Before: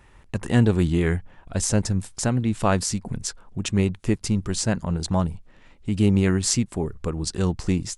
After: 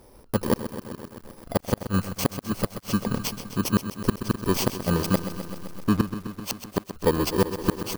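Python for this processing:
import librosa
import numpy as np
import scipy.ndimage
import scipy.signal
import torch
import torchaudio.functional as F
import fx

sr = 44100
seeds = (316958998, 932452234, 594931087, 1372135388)

y = fx.bit_reversed(x, sr, seeds[0], block=32)
y = fx.graphic_eq(y, sr, hz=(250, 500, 1000, 4000), db=(7, 12, 9, 5))
y = fx.gate_flip(y, sr, shuts_db=-5.0, range_db=-40)
y = fx.backlash(y, sr, play_db=-23.5, at=(5.15, 6.08))
y = fx.echo_crushed(y, sr, ms=129, feedback_pct=80, bits=7, wet_db=-11)
y = F.gain(torch.from_numpy(y), -2.5).numpy()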